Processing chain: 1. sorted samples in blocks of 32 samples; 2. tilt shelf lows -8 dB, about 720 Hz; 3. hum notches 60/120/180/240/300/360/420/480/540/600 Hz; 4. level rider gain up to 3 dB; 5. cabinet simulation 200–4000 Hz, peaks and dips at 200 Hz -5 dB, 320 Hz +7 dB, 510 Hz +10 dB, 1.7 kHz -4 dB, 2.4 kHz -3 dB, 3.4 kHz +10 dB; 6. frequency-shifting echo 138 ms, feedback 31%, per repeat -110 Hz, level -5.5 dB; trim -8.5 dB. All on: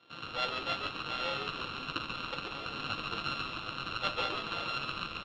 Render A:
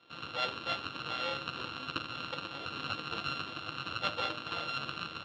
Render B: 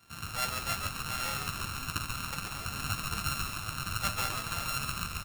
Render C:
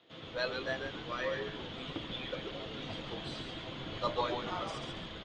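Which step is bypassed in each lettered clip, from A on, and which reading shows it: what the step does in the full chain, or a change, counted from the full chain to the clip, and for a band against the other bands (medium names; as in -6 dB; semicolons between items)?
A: 6, loudness change -1.0 LU; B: 5, 8 kHz band +21.5 dB; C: 1, distortion -8 dB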